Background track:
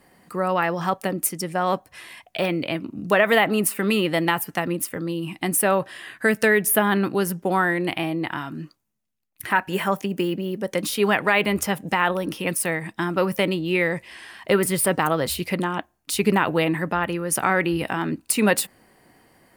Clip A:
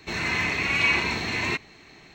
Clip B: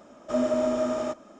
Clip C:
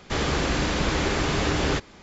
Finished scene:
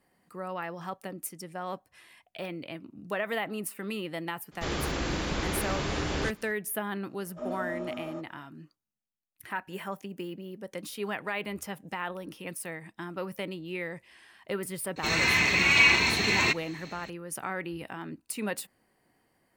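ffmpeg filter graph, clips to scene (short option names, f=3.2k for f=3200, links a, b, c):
-filter_complex "[0:a]volume=-14dB[a];[2:a]lowpass=f=2.6k:p=1[b];[1:a]highshelf=f=3k:g=8.5[c];[3:a]atrim=end=2.02,asetpts=PTS-STARTPTS,volume=-7dB,afade=t=in:d=0.02,afade=t=out:st=2:d=0.02,adelay=4510[d];[b]atrim=end=1.39,asetpts=PTS-STARTPTS,volume=-11dB,afade=t=in:d=0.004:c=hsin,afade=t=out:st=1.386:d=0.004:c=hsin,adelay=7080[e];[c]atrim=end=2.14,asetpts=PTS-STARTPTS,volume=-1dB,afade=t=in:d=0.004:c=hsin,afade=t=out:st=2.136:d=0.004:c=hsin,adelay=14960[f];[a][d][e][f]amix=inputs=4:normalize=0"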